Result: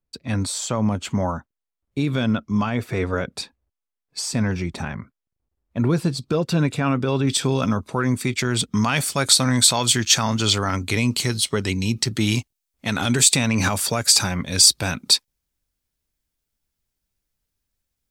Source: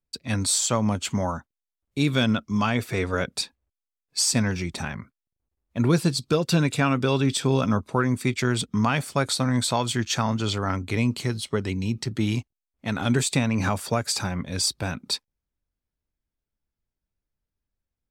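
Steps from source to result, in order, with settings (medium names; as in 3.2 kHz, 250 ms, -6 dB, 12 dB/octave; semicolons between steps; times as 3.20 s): peak limiter -14.5 dBFS, peak gain reduction 4.5 dB; treble shelf 2.5 kHz -8 dB, from 7.27 s +3 dB, from 8.74 s +10.5 dB; trim +3.5 dB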